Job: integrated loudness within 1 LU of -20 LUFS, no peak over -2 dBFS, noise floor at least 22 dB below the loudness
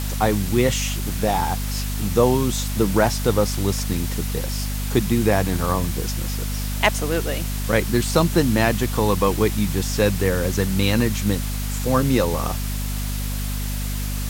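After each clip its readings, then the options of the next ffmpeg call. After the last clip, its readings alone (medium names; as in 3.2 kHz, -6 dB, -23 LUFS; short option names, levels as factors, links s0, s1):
hum 50 Hz; highest harmonic 250 Hz; hum level -23 dBFS; noise floor -25 dBFS; noise floor target -44 dBFS; loudness -22.0 LUFS; peak level -2.5 dBFS; loudness target -20.0 LUFS
-> -af "bandreject=f=50:t=h:w=4,bandreject=f=100:t=h:w=4,bandreject=f=150:t=h:w=4,bandreject=f=200:t=h:w=4,bandreject=f=250:t=h:w=4"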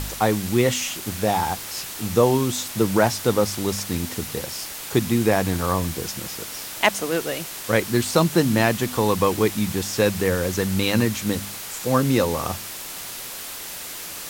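hum not found; noise floor -35 dBFS; noise floor target -45 dBFS
-> -af "afftdn=nr=10:nf=-35"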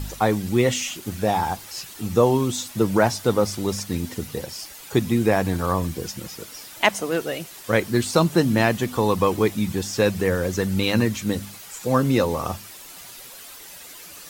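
noise floor -42 dBFS; noise floor target -45 dBFS
-> -af "afftdn=nr=6:nf=-42"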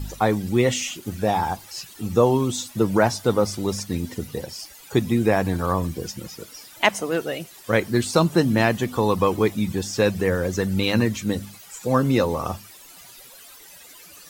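noise floor -46 dBFS; loudness -22.5 LUFS; peak level -2.5 dBFS; loudness target -20.0 LUFS
-> -af "volume=1.33,alimiter=limit=0.794:level=0:latency=1"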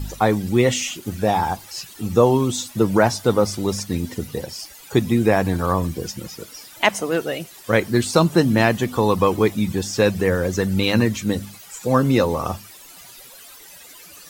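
loudness -20.5 LUFS; peak level -2.0 dBFS; noise floor -43 dBFS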